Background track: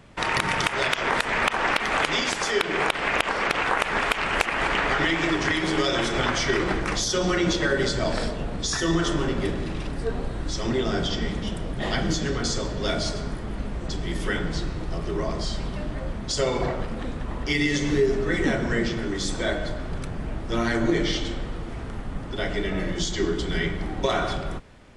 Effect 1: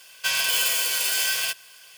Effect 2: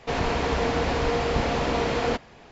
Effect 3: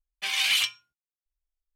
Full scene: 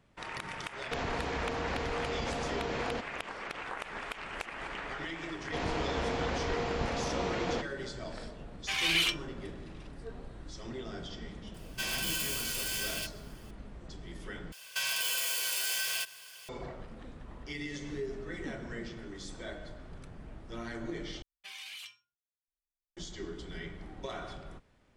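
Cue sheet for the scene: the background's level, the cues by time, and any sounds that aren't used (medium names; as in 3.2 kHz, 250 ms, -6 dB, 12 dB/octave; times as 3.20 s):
background track -16.5 dB
0.84 s: add 2 -5 dB + compression 4:1, threshold -27 dBFS
5.45 s: add 2 -9 dB
8.45 s: add 3 -0.5 dB + treble shelf 3.2 kHz -8 dB
11.54 s: add 1 -11.5 dB
14.52 s: replace with 1 -2 dB + compression 2.5:1, threshold -30 dBFS
21.22 s: replace with 3 -15.5 dB + compression, threshold -26 dBFS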